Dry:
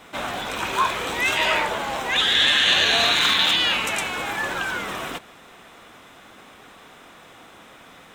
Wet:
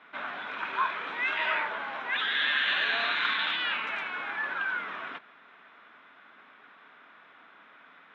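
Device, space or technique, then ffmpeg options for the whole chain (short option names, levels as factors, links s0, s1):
phone earpiece: -af "highpass=330,equalizer=f=350:t=q:w=4:g=-7,equalizer=f=510:t=q:w=4:g=-9,equalizer=f=760:t=q:w=4:g=-6,equalizer=f=1500:t=q:w=4:g=5,equalizer=f=2900:t=q:w=4:g=-4,lowpass=f=3100:w=0.5412,lowpass=f=3100:w=1.3066,volume=0.473"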